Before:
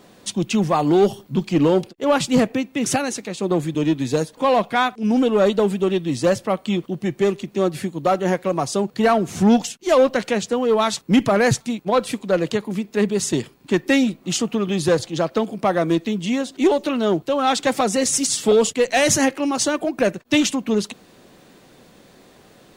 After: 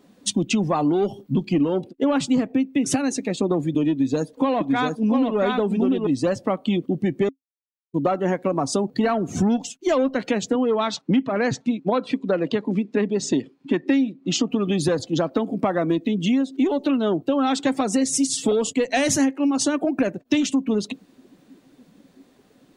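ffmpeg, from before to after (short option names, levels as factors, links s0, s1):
-filter_complex "[0:a]asettb=1/sr,asplit=3[s0][s1][s2];[s0]atrim=end=3.914[s3];[s1]atrim=start=3.91:end=6.07,asetpts=PTS-STARTPTS,afade=t=in:d=0.004:c=qsin,afade=t=out:st=2.156:d=0.004:c=qsin,aecho=1:1:693:0.708,atrim=end_sample=95256[s4];[s2]atrim=start=6.066[s5];[s3][s4]acrossfade=d=0.004:c1=hsin:c2=qsin[s6];[s6][s5]acrossfade=d=0.004:c1=qsin:c2=hsin,asettb=1/sr,asplit=3[s7][s8][s9];[s7]atrim=end=10.554[s10];[s8]atrim=start=10.55:end=14.51,asetpts=PTS-STARTPTS,afade=t=in:d=0.004:c=qsin,afade=t=out:st=3.956:d=0.004:c=qsin,highpass=150,lowpass=5600[s11];[s9]atrim=start=14.506[s12];[s10][s11]acrossfade=d=0.004:c1=hsin:c2=qsin[s13];[s13][s12]acrossfade=d=0.004:c1=qsin:c2=hsin,asplit=3[s14][s15][s16];[s14]atrim=end=7.29,asetpts=PTS-STARTPTS,afade=t=out:st=7.286:d=0.004:c=hsin[s17];[s15]atrim=start=7.29:end=7.94,asetpts=PTS-STARTPTS,volume=0[s18];[s16]atrim=start=7.94,asetpts=PTS-STARTPTS,afade=t=in:d=0.004:c=hsin[s19];[s17][s18][s19]concat=n=3:v=0:a=1,afftdn=nr=16:nf=-35,equalizer=f=270:t=o:w=0.24:g=11,acompressor=threshold=0.0631:ratio=6,volume=1.88"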